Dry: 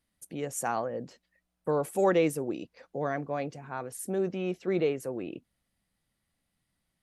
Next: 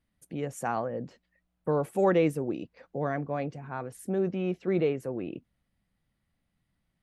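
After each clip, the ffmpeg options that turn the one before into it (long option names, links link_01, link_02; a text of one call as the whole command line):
ffmpeg -i in.wav -af "bass=frequency=250:gain=5,treble=frequency=4000:gain=-9" out.wav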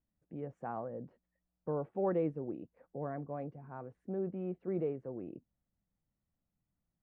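ffmpeg -i in.wav -af "lowpass=1100,volume=-8.5dB" out.wav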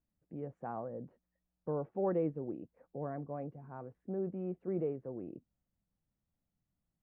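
ffmpeg -i in.wav -af "highshelf=frequency=2500:gain=-10" out.wav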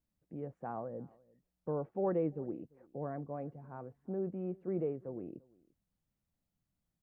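ffmpeg -i in.wav -filter_complex "[0:a]asplit=2[link_01][link_02];[link_02]adelay=344,volume=-25dB,highshelf=frequency=4000:gain=-7.74[link_03];[link_01][link_03]amix=inputs=2:normalize=0" out.wav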